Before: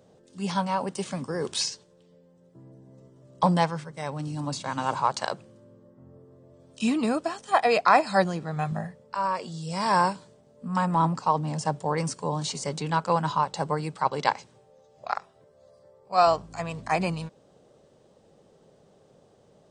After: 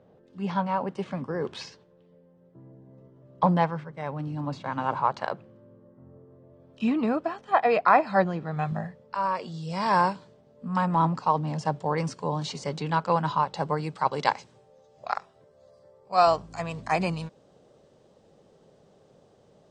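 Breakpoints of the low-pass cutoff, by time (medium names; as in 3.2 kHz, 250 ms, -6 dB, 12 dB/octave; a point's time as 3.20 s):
8.24 s 2.3 kHz
8.70 s 4.4 kHz
13.57 s 4.4 kHz
14.25 s 7.7 kHz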